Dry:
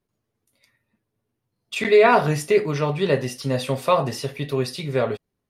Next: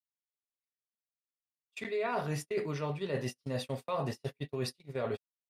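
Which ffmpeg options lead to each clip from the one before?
-af "agate=range=-38dB:threshold=-26dB:ratio=16:detection=peak,areverse,acompressor=threshold=-26dB:ratio=6,areverse,volume=-5.5dB"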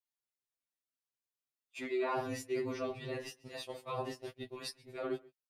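-filter_complex "[0:a]asplit=2[a][b];[b]adelay=134.1,volume=-23dB,highshelf=f=4k:g=-3.02[c];[a][c]amix=inputs=2:normalize=0,aeval=exprs='val(0)*sin(2*PI*42*n/s)':c=same,afftfilt=real='re*2.45*eq(mod(b,6),0)':imag='im*2.45*eq(mod(b,6),0)':win_size=2048:overlap=0.75,volume=3dB"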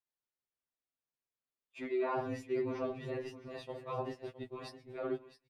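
-af "lowpass=f=1.5k:p=1,aecho=1:1:663:0.211,volume=1dB"

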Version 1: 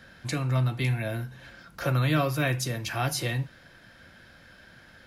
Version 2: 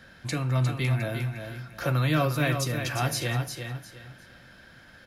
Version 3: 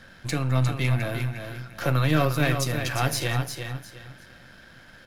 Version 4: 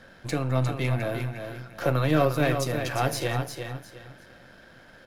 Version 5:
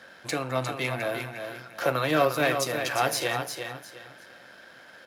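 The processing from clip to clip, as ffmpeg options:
-af "aecho=1:1:355|710|1065:0.447|0.121|0.0326"
-af "aeval=exprs='if(lt(val(0),0),0.447*val(0),val(0))':c=same,volume=4.5dB"
-af "equalizer=f=510:t=o:w=2.1:g=8,volume=-4.5dB"
-af "highpass=f=640:p=1,volume=4dB"

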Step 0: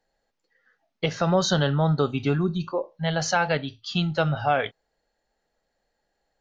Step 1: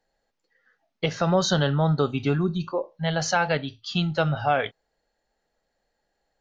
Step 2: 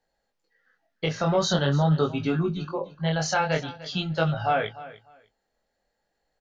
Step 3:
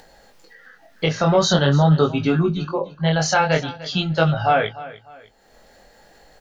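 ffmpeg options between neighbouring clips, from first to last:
-af anull
-af "flanger=delay=18:depth=7.7:speed=0.45,aecho=1:1:299|598:0.141|0.0268,volume=1.5dB"
-af "acompressor=mode=upward:threshold=-40dB:ratio=2.5,volume=6.5dB"

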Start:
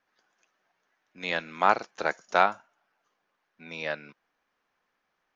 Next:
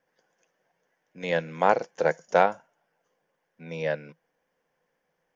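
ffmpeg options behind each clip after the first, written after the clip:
-af "equalizer=f=160:t=o:w=0.33:g=11,equalizer=f=500:t=o:w=0.33:g=11,equalizer=f=1.25k:t=o:w=0.33:g=-10,equalizer=f=2.5k:t=o:w=0.33:g=-5,equalizer=f=4k:t=o:w=0.33:g=-11,volume=1.5dB"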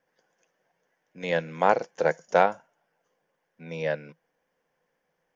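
-af anull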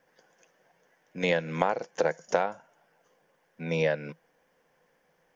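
-af "acompressor=threshold=-29dB:ratio=16,volume=7.5dB"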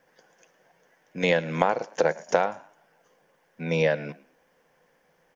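-filter_complex "[0:a]asplit=3[a][b][c];[b]adelay=109,afreqshift=54,volume=-20.5dB[d];[c]adelay=218,afreqshift=108,volume=-31dB[e];[a][d][e]amix=inputs=3:normalize=0,volume=3.5dB"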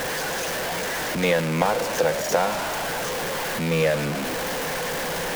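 -af "aeval=exprs='val(0)+0.5*0.106*sgn(val(0))':c=same,volume=-2dB"

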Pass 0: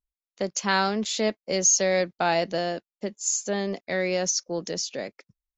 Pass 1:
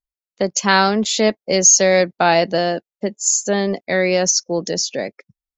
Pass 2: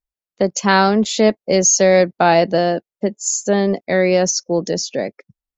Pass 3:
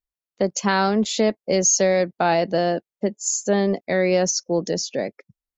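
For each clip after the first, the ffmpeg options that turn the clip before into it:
-af "afftdn=nr=13:nf=-45,volume=9dB"
-af "tiltshelf=f=1.3k:g=3.5"
-af "alimiter=limit=-5.5dB:level=0:latency=1:release=200,volume=-3.5dB"

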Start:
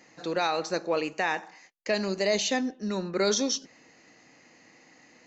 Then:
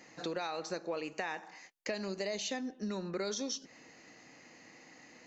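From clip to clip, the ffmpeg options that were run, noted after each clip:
-af "acompressor=threshold=-35dB:ratio=5"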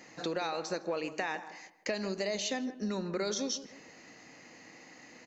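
-filter_complex "[0:a]asplit=2[a][b];[b]adelay=158,lowpass=f=1.2k:p=1,volume=-12dB,asplit=2[c][d];[d]adelay=158,lowpass=f=1.2k:p=1,volume=0.36,asplit=2[e][f];[f]adelay=158,lowpass=f=1.2k:p=1,volume=0.36,asplit=2[g][h];[h]adelay=158,lowpass=f=1.2k:p=1,volume=0.36[i];[a][c][e][g][i]amix=inputs=5:normalize=0,volume=3dB"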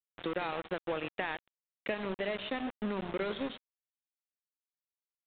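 -af "aeval=exprs='val(0)*gte(abs(val(0)),0.0188)':c=same,aresample=8000,aresample=44100"

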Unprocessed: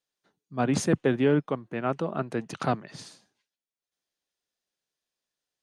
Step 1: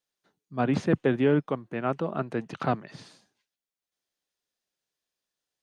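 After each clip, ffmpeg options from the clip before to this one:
-filter_complex "[0:a]acrossover=split=4000[a][b];[b]acompressor=threshold=-58dB:ratio=4:attack=1:release=60[c];[a][c]amix=inputs=2:normalize=0"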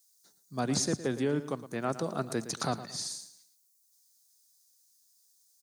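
-af "alimiter=limit=-17.5dB:level=0:latency=1:release=500,aexciter=amount=14.4:drive=5.8:freq=4.4k,aecho=1:1:113|226|339:0.211|0.0719|0.0244,volume=-2.5dB"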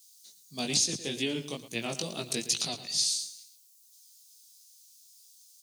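-af "flanger=delay=17:depth=4.1:speed=2.3,highshelf=f=2k:t=q:w=3:g=12,alimiter=limit=-14.5dB:level=0:latency=1:release=464"

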